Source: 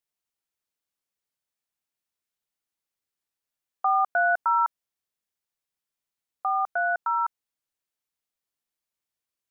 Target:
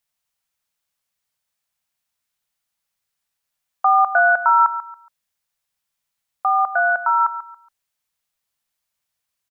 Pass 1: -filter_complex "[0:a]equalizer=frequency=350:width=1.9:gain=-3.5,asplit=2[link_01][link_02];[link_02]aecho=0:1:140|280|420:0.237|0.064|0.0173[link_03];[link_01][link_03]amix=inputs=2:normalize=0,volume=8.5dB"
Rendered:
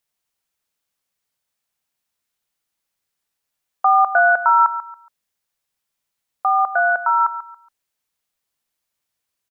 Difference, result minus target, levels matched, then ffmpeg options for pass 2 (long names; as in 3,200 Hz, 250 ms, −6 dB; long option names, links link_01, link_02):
250 Hz band +5.0 dB
-filter_complex "[0:a]equalizer=frequency=350:width=1.9:gain=-13,asplit=2[link_01][link_02];[link_02]aecho=0:1:140|280|420:0.237|0.064|0.0173[link_03];[link_01][link_03]amix=inputs=2:normalize=0,volume=8.5dB"